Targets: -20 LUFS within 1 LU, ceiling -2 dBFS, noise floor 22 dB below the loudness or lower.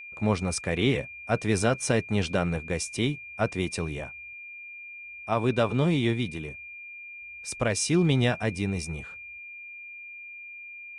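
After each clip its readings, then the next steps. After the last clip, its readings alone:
steady tone 2.4 kHz; tone level -40 dBFS; loudness -27.5 LUFS; peak level -10.0 dBFS; loudness target -20.0 LUFS
-> band-stop 2.4 kHz, Q 30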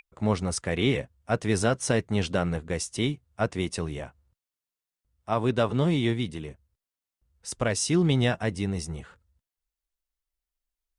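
steady tone not found; loudness -27.0 LUFS; peak level -10.5 dBFS; loudness target -20.0 LUFS
-> trim +7 dB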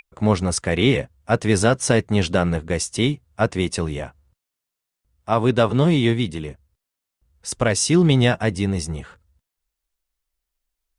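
loudness -20.5 LUFS; peak level -3.5 dBFS; noise floor -84 dBFS

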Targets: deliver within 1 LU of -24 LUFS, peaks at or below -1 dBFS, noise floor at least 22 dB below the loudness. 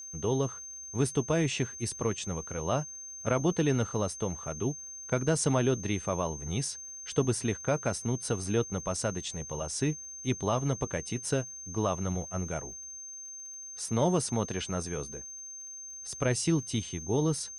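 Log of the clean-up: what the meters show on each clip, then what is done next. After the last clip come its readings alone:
tick rate 59 per s; steady tone 6.3 kHz; tone level -41 dBFS; loudness -31.5 LUFS; peak level -14.5 dBFS; loudness target -24.0 LUFS
-> de-click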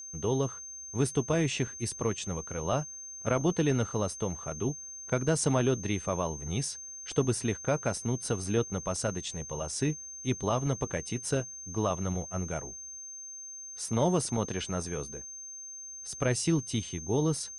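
tick rate 0.11 per s; steady tone 6.3 kHz; tone level -41 dBFS
-> band-stop 6.3 kHz, Q 30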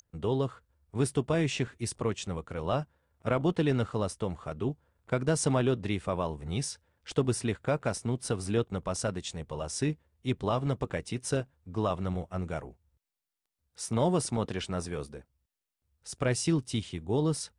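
steady tone not found; loudness -31.5 LUFS; peak level -14.5 dBFS; loudness target -24.0 LUFS
-> trim +7.5 dB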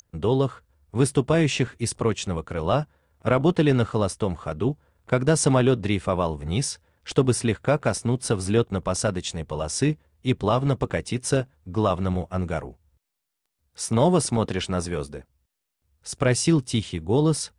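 loudness -24.0 LUFS; peak level -7.0 dBFS; noise floor -81 dBFS

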